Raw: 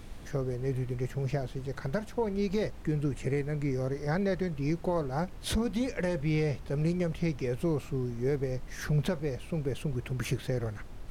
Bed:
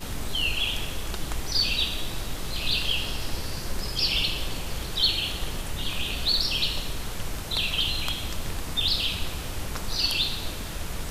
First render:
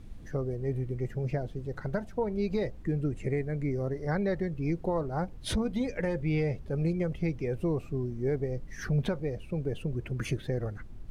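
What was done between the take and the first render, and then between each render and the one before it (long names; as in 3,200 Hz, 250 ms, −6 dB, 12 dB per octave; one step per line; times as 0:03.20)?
broadband denoise 11 dB, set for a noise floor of −44 dBFS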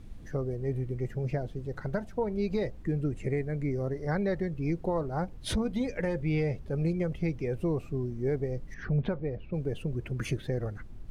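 0:08.74–0:09.54: high-frequency loss of the air 290 metres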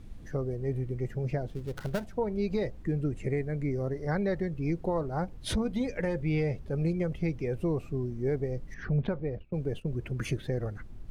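0:01.48–0:02.08: gap after every zero crossing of 0.17 ms
0:09.07–0:09.96: noise gate −41 dBFS, range −17 dB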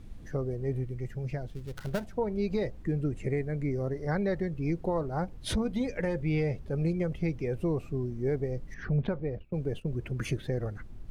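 0:00.85–0:01.87: parametric band 430 Hz −6 dB 2.9 octaves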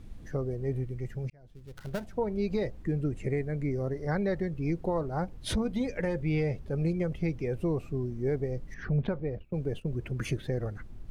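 0:01.30–0:02.18: fade in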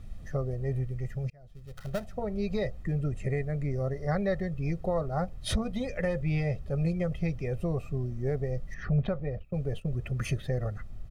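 notch filter 470 Hz, Q 12
comb filter 1.6 ms, depth 61%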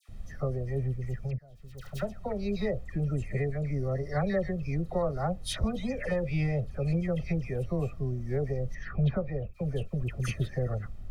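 all-pass dispersion lows, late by 87 ms, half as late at 1,600 Hz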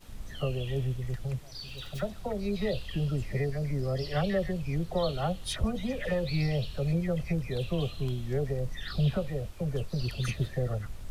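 mix in bed −19 dB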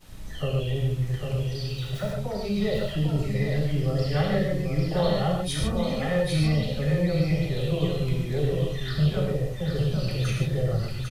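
single-tap delay 798 ms −5.5 dB
reverb whose tail is shaped and stops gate 170 ms flat, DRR −1.5 dB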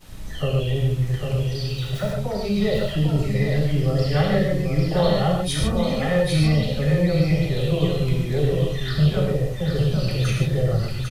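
level +4.5 dB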